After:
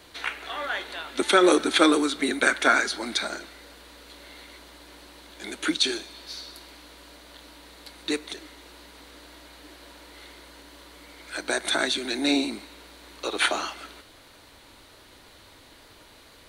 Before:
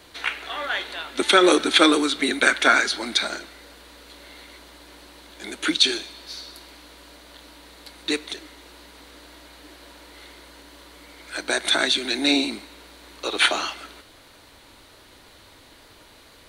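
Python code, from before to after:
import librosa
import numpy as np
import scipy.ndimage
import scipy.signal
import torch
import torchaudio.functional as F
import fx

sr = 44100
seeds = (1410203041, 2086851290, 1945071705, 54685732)

y = fx.dynamic_eq(x, sr, hz=3200.0, q=0.86, threshold_db=-34.0, ratio=4.0, max_db=-5)
y = F.gain(torch.from_numpy(y), -1.5).numpy()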